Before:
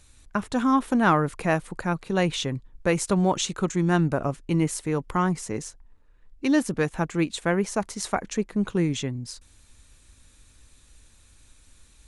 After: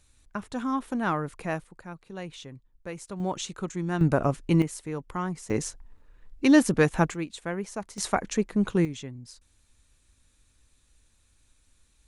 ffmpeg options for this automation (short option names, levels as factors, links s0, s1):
-af "asetnsamples=n=441:p=0,asendcmd='1.64 volume volume -15dB;3.2 volume volume -7.5dB;4.01 volume volume 2dB;4.62 volume volume -7.5dB;5.5 volume volume 3.5dB;7.14 volume volume -8.5dB;7.98 volume volume 0.5dB;8.85 volume volume -9.5dB',volume=0.422"